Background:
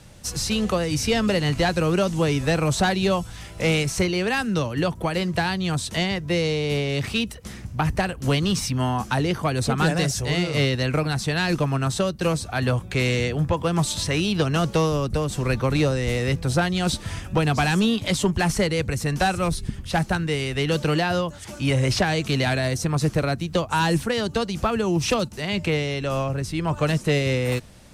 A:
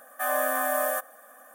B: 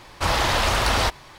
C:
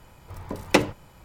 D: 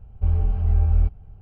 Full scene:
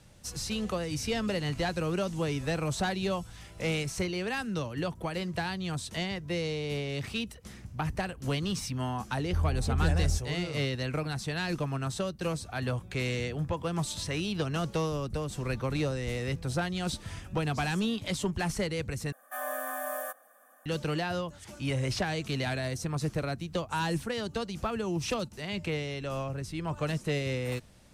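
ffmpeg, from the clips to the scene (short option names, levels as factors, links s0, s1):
-filter_complex "[0:a]volume=0.335[s0];[4:a]highpass=57[s1];[s0]asplit=2[s2][s3];[s2]atrim=end=19.124[s4];[1:a]atrim=end=1.54,asetpts=PTS-STARTPTS,volume=0.355[s5];[s3]atrim=start=20.656[s6];[s1]atrim=end=1.41,asetpts=PTS-STARTPTS,volume=0.501,afade=t=in:d=0.004:c=hsin,afade=t=out:st=1.406:d=0.004:c=hsin,adelay=9100[s7];[s4][s5]acrossfade=d=0.004:c1=hsin:c2=hsin[s8];[s8][s6]acrossfade=d=0.004:c1=hsin:c2=hsin[s9];[s9][s7]amix=inputs=2:normalize=0"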